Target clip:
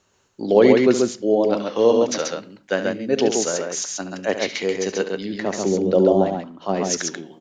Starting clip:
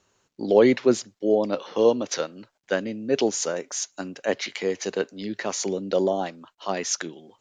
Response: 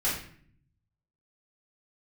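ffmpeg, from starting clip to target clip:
-filter_complex "[0:a]asettb=1/sr,asplit=3[a][b][c];[a]atrim=end=5.404[d];[b]atrim=start=5.4:end=6.9,asetpts=PTS-STARTPTS,afade=t=in:d=0.004:c=qsin,afade=t=out:st=1.496:d=0.004:c=qsin,tiltshelf=f=800:g=7[e];[c]atrim=start=6.896[f];[d][e]acrossfade=d=0.004:c1=hsin:c2=qsin[g];[g][f]acrossfade=d=0.004:c1=qsin:c2=hsin,aecho=1:1:71|135:0.282|0.668,asplit=2[h][i];[1:a]atrim=start_sample=2205[j];[i][j]afir=irnorm=-1:irlink=0,volume=-25.5dB[k];[h][k]amix=inputs=2:normalize=0,volume=2dB"

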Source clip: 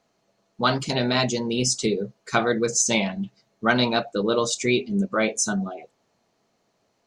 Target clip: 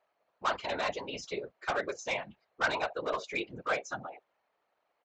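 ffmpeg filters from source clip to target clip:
-filter_complex "[0:a]atempo=1.4,acrossover=split=540 3000:gain=0.0794 1 0.0631[a][b][c];[a][b][c]amix=inputs=3:normalize=0,aresample=16000,asoftclip=type=hard:threshold=-21.5dB,aresample=44100,afftfilt=real='hypot(re,im)*cos(2*PI*random(0))':imag='hypot(re,im)*sin(2*PI*random(1))':win_size=512:overlap=0.75,volume=3dB"

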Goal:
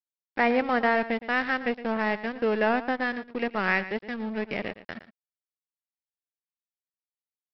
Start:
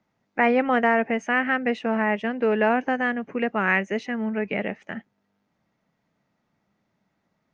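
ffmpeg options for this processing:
-af "acompressor=mode=upward:threshold=-26dB:ratio=2.5,aresample=11025,aeval=exprs='sgn(val(0))*max(abs(val(0))-0.02,0)':c=same,aresample=44100,aecho=1:1:115:0.188,volume=-2dB"

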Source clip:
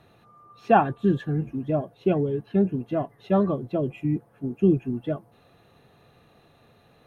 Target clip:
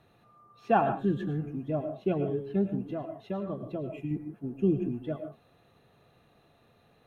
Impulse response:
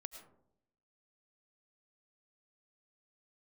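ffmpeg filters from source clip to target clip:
-filter_complex "[0:a]asettb=1/sr,asplit=3[a][b][c];[a]atrim=end=2.914[d];[b]atrim=start=2.91:end=4.11,asetpts=PTS-STARTPTS,afade=t=in:d=0.004:c=qsin,afade=t=out:st=1.196:d=0.004:c=qsin,acompressor=threshold=-25dB:ratio=5[e];[c]atrim=start=4.106[f];[d][e]acrossfade=d=0.004:c1=hsin:c2=qsin[g];[g][f]acrossfade=d=0.004:c1=qsin:c2=hsin[h];[1:a]atrim=start_sample=2205,afade=t=out:st=0.23:d=0.01,atrim=end_sample=10584[i];[h][i]afir=irnorm=-1:irlink=0,volume=-1dB"

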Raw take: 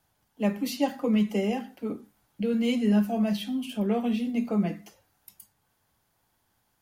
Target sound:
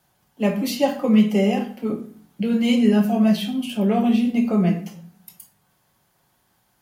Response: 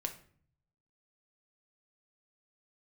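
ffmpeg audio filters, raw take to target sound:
-filter_complex "[0:a]highpass=45[a];[1:a]atrim=start_sample=2205,asetrate=48510,aresample=44100[b];[a][b]afir=irnorm=-1:irlink=0,volume=8dB"

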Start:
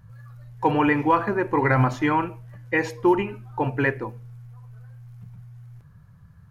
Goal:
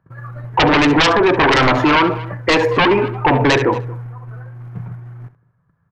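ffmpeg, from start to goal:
-filter_complex "[0:a]agate=range=-28dB:threshold=-43dB:ratio=16:detection=peak,acrossover=split=170 2100:gain=0.158 1 0.0891[a][b][c];[a][b][c]amix=inputs=3:normalize=0,aeval=exprs='0.376*sin(PI/2*4.47*val(0)/0.376)':c=same,asplit=2[d][e];[e]aecho=0:1:74:0.168[f];[d][f]amix=inputs=2:normalize=0,atempo=1.1,equalizer=f=210:w=5.8:g=-8,asplit=2[g][h];[h]adelay=227.4,volume=-26dB,highshelf=f=4k:g=-5.12[i];[g][i]amix=inputs=2:normalize=0,alimiter=level_in=13.5dB:limit=-1dB:release=50:level=0:latency=1,volume=-6.5dB"

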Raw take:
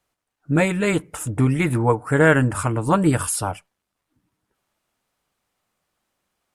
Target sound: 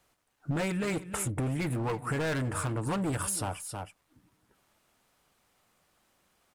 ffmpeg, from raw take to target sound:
-filter_complex "[0:a]asoftclip=type=hard:threshold=-19dB,asplit=2[a][b];[b]aecho=0:1:318:0.141[c];[a][c]amix=inputs=2:normalize=0,acompressor=threshold=-35dB:ratio=10,volume=5.5dB"

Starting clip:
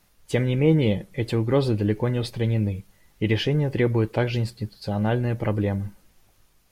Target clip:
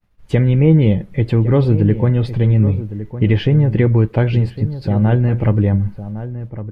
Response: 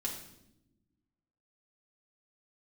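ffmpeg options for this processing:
-filter_complex "[0:a]agate=range=-33dB:threshold=-52dB:ratio=3:detection=peak,bass=f=250:g=8,treble=f=4k:g=-15,asplit=2[a][b];[b]acompressor=threshold=-24dB:ratio=6,volume=0dB[c];[a][c]amix=inputs=2:normalize=0,asplit=2[d][e];[e]adelay=1108,volume=-12dB,highshelf=f=4k:g=-24.9[f];[d][f]amix=inputs=2:normalize=0,volume=1dB"

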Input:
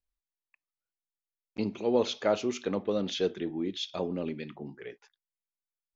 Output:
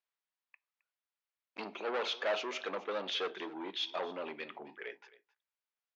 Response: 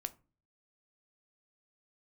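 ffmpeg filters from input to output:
-filter_complex "[0:a]asoftclip=type=tanh:threshold=-30dB,highpass=690,lowpass=3.2k,aecho=1:1:265:0.1,asplit=2[a][b];[1:a]atrim=start_sample=2205[c];[b][c]afir=irnorm=-1:irlink=0,volume=-4dB[d];[a][d]amix=inputs=2:normalize=0,volume=2dB"

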